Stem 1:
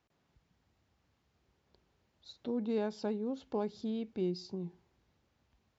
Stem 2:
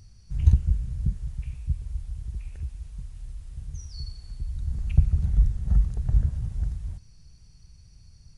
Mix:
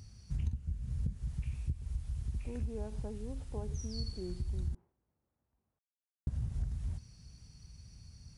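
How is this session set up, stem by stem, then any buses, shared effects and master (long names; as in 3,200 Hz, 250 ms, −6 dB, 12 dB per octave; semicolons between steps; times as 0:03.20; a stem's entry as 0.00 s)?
−9.0 dB, 0.00 s, no send, low-pass filter 1,200 Hz 12 dB per octave; level that may fall only so fast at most 130 dB per second
+0.5 dB, 0.00 s, muted 0:04.75–0:06.27, no send, high-pass filter 52 Hz; parametric band 240 Hz +6.5 dB 0.32 octaves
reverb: not used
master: downward compressor 16 to 1, threshold −31 dBFS, peak gain reduction 20.5 dB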